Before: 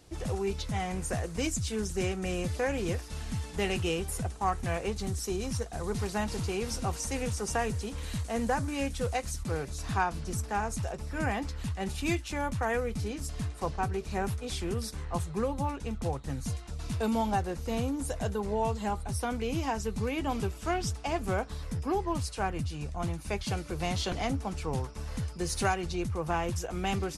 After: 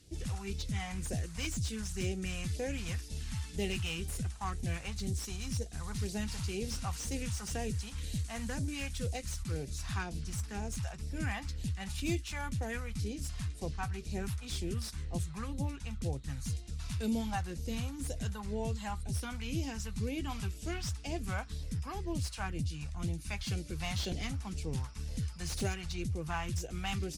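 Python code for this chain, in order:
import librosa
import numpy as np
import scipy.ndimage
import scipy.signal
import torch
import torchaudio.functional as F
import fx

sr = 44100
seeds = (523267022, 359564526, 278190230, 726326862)

y = fx.cheby_harmonics(x, sr, harmonics=(8,), levels_db=(-35,), full_scale_db=-14.0)
y = fx.phaser_stages(y, sr, stages=2, low_hz=370.0, high_hz=1200.0, hz=2.0, feedback_pct=25)
y = fx.slew_limit(y, sr, full_power_hz=91.0)
y = y * 10.0 ** (-2.0 / 20.0)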